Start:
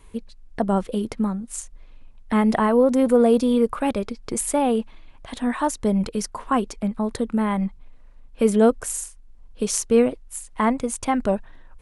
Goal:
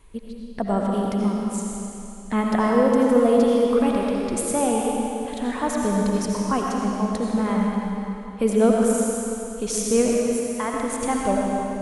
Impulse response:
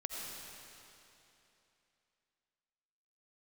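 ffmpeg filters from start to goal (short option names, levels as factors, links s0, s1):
-filter_complex "[0:a]asettb=1/sr,asplit=3[s0][s1][s2];[s0]atrim=end=10.244[s3];[s1]atrim=start=10.24:end=10.74,asetpts=PTS-STARTPTS,afade=t=in:d=0.004:c=qsin,afade=t=out:st=0.496:d=0.004:c=qsin,highpass=f=1100:p=1[s4];[s2]atrim=start=10.736[s5];[s3][s4]acrossfade=d=0.004:c1=hsin:c2=qsin[s6];[s6][s5]acrossfade=d=0.004:c1=qsin:c2=hsin[s7];[1:a]atrim=start_sample=2205[s8];[s7][s8]afir=irnorm=-1:irlink=0"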